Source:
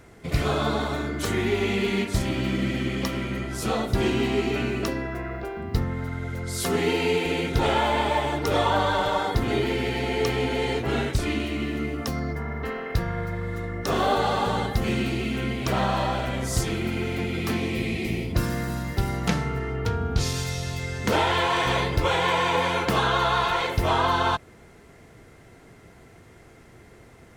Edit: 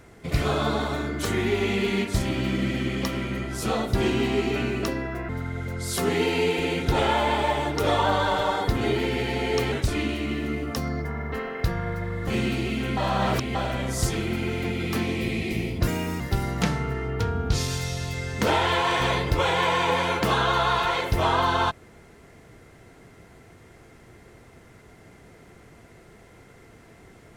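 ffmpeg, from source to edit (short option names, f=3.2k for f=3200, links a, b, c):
-filter_complex "[0:a]asplit=8[a][b][c][d][e][f][g][h];[a]atrim=end=5.292[i];[b]atrim=start=5.958:end=10.392[j];[c]atrim=start=11.028:end=13.582[k];[d]atrim=start=14.808:end=15.512[l];[e]atrim=start=15.508:end=16.092,asetpts=PTS-STARTPTS,areverse[m];[f]atrim=start=16.088:end=18.414[n];[g]atrim=start=18.41:end=18.86,asetpts=PTS-STARTPTS,asetrate=59535,aresample=44100[o];[h]atrim=start=18.856[p];[i][j]acrossfade=d=0.004:c1=hsin:c2=hsin[q];[q][k]acrossfade=d=0.004:c1=hsin:c2=hsin[r];[r][l]acrossfade=d=0.004:c1=hsin:c2=hsin[s];[s][m]acrossfade=d=0.004:c1=hsin:c2=hsin[t];[t][n]acrossfade=d=0.004:c1=hsin:c2=hsin[u];[u][o]acrossfade=d=0.004:c1=hsin:c2=hsin[v];[v][p]acrossfade=d=0.004:c1=hsin:c2=hsin"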